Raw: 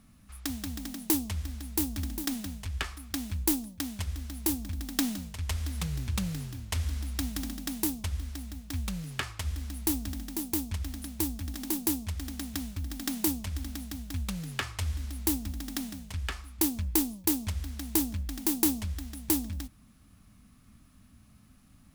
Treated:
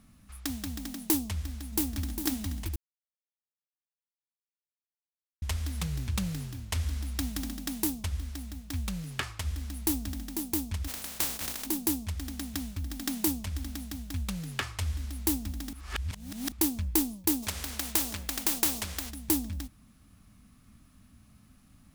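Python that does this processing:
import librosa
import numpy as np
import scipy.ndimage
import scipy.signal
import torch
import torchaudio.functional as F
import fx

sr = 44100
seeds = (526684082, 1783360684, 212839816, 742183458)

y = fx.echo_throw(x, sr, start_s=1.24, length_s=0.96, ms=480, feedback_pct=30, wet_db=-6.0)
y = fx.spec_flatten(y, sr, power=0.28, at=(10.87, 11.65), fade=0.02)
y = fx.spectral_comp(y, sr, ratio=2.0, at=(17.42, 19.09), fade=0.02)
y = fx.edit(y, sr, fx.silence(start_s=2.76, length_s=2.66),
    fx.reverse_span(start_s=15.73, length_s=0.79), tone=tone)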